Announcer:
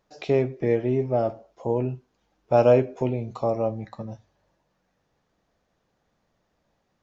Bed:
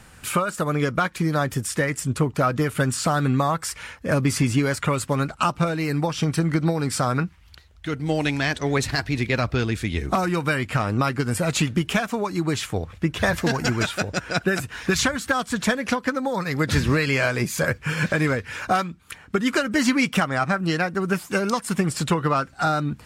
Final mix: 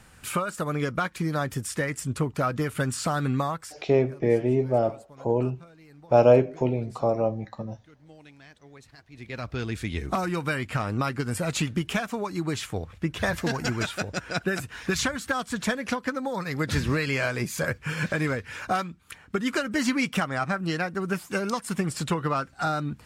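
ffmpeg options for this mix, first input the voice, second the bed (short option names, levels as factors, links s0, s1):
-filter_complex "[0:a]adelay=3600,volume=1.06[s0];[1:a]volume=7.5,afade=t=out:st=3.41:d=0.41:silence=0.0749894,afade=t=in:st=9.1:d=0.73:silence=0.0749894[s1];[s0][s1]amix=inputs=2:normalize=0"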